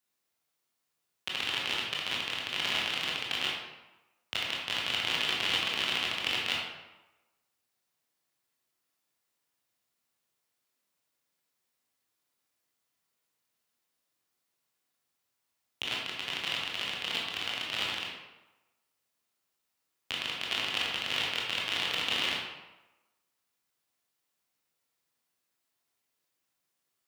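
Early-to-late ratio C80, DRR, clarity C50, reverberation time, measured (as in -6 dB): 3.5 dB, -3.5 dB, 1.0 dB, 1.0 s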